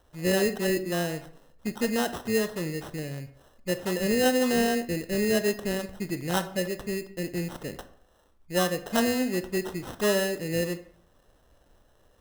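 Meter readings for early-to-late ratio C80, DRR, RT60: 17.0 dB, 10.0 dB, 0.65 s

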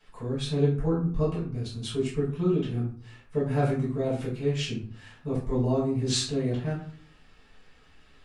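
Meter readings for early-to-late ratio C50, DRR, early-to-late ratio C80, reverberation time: 5.0 dB, -8.5 dB, 10.0 dB, 0.45 s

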